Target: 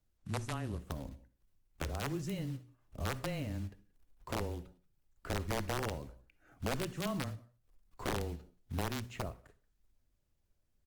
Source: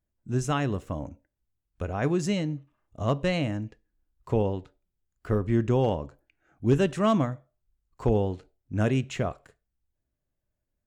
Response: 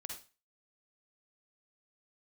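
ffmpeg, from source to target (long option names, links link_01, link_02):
-filter_complex "[0:a]acompressor=threshold=-50dB:ratio=2,lowshelf=frequency=150:gain=8.5,asplit=2[link_01][link_02];[link_02]adelay=180,highpass=300,lowpass=3400,asoftclip=type=hard:threshold=-34dB,volume=-23dB[link_03];[link_01][link_03]amix=inputs=2:normalize=0,aeval=exprs='(mod(25.1*val(0)+1,2)-1)/25.1':channel_layout=same,highshelf=frequency=5200:gain=-2.5,acrusher=bits=5:mode=log:mix=0:aa=0.000001,asplit=2[link_04][link_05];[1:a]atrim=start_sample=2205[link_06];[link_05][link_06]afir=irnorm=-1:irlink=0,volume=-9dB[link_07];[link_04][link_07]amix=inputs=2:normalize=0,afreqshift=-15,acontrast=30,bandreject=frequency=60:width_type=h:width=6,bandreject=frequency=120:width_type=h:width=6,bandreject=frequency=180:width_type=h:width=6,bandreject=frequency=240:width_type=h:width=6,volume=-6dB" -ar 48000 -c:a libopus -b:a 24k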